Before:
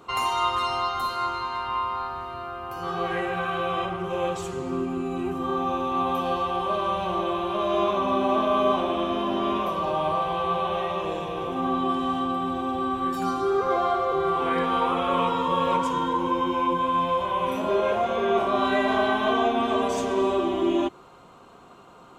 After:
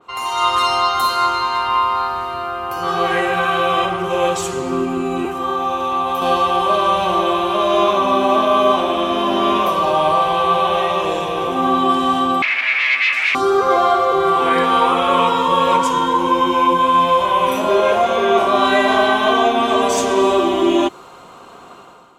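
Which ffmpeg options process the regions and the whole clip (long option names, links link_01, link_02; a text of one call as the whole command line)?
ffmpeg -i in.wav -filter_complex "[0:a]asettb=1/sr,asplit=3[link_01][link_02][link_03];[link_01]atrim=end=5.254[link_04];[link_02]atrim=start=5.25:end=6.22,asetpts=PTS-STARTPTS,afade=type=in:duration=0.004:curve=qsin,afade=type=out:start_time=0.966:duration=0.004:curve=qsin,highpass=42,acrossover=split=140|370|1100[link_05][link_06][link_07][link_08];[link_05]acompressor=threshold=-46dB:ratio=3[link_09];[link_06]acompressor=threshold=-48dB:ratio=3[link_10];[link_07]acompressor=threshold=-32dB:ratio=3[link_11];[link_08]acompressor=threshold=-36dB:ratio=3[link_12];[link_09][link_10][link_11][link_12]amix=inputs=4:normalize=0[link_13];[link_03]atrim=start=6.216[link_14];[link_04][link_13]acrossfade=duration=0.004:curve1=hsin:curve2=qsin[link_15];[link_15][link_14]acrossfade=duration=0.004:curve1=qsin:curve2=hsin,asettb=1/sr,asplit=3[link_16][link_17][link_18];[link_16]atrim=end=12.424[link_19];[link_17]atrim=start=12.42:end=13.35,asetpts=PTS-STARTPTS,afade=type=in:duration=0.004:curve=qsin,afade=type=out:start_time=0.926:duration=0.004:curve=qsin,aeval=exprs='0.178*sin(PI/2*5.01*val(0)/0.178)':channel_layout=same,bandpass=frequency=2300:width_type=q:width=7.3[link_20];[link_18]atrim=start=13.346[link_21];[link_19][link_20]acrossfade=duration=0.004:curve1=hsin:curve2=qsin[link_22];[link_22][link_21]acrossfade=duration=0.004:curve1=qsin:curve2=hsin,lowshelf=frequency=270:gain=-8,dynaudnorm=framelen=110:gausssize=7:maxgain=11.5dB,adynamicequalizer=threshold=0.0316:dfrequency=4000:dqfactor=0.7:tfrequency=4000:tqfactor=0.7:attack=5:release=100:ratio=0.375:range=2.5:mode=boostabove:tftype=highshelf" out.wav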